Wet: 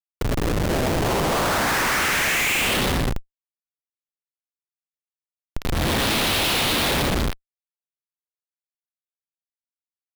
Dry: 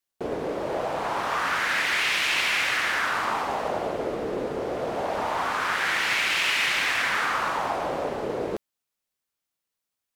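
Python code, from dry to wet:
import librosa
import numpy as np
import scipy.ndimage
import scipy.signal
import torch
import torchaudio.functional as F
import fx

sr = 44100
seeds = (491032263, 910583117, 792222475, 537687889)

y = fx.filter_sweep_highpass(x, sr, from_hz=87.0, to_hz=3800.0, start_s=0.05, end_s=2.88, q=2.8)
y = fx.schmitt(y, sr, flips_db=-24.5)
y = y * 10.0 ** (6.0 / 20.0)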